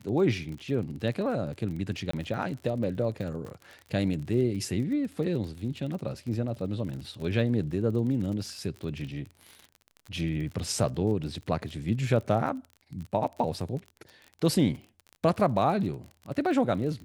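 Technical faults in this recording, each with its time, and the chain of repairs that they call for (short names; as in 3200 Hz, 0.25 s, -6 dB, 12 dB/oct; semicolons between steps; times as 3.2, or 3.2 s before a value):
crackle 39/s -36 dBFS
2.11–2.13 gap 24 ms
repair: de-click; interpolate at 2.11, 24 ms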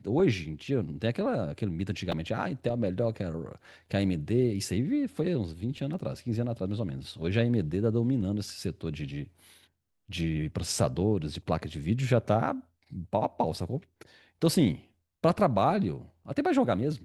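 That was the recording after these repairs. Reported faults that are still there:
none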